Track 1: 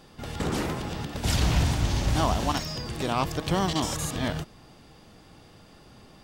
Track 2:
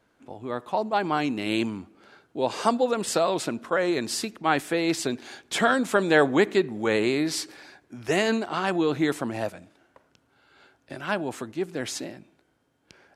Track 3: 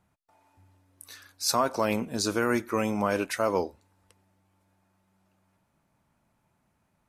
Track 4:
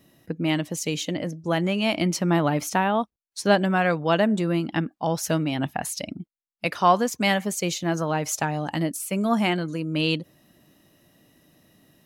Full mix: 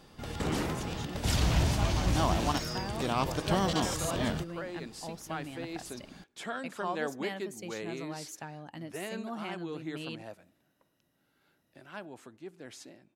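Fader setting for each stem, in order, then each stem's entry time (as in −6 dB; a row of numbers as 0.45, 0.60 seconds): −3.5, −16.0, −18.0, −17.5 decibels; 0.00, 0.85, 0.25, 0.00 seconds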